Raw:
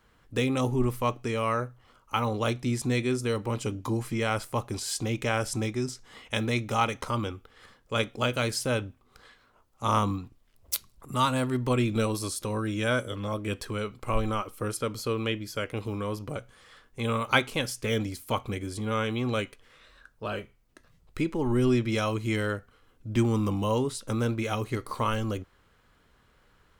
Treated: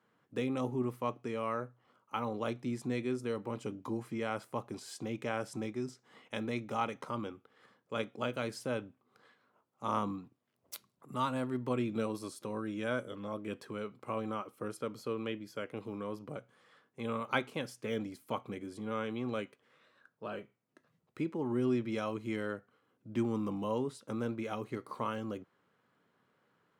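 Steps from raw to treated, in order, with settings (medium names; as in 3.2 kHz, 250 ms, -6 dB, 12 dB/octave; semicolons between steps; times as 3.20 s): high-pass 140 Hz 24 dB/octave; treble shelf 2.5 kHz -10.5 dB; trim -6.5 dB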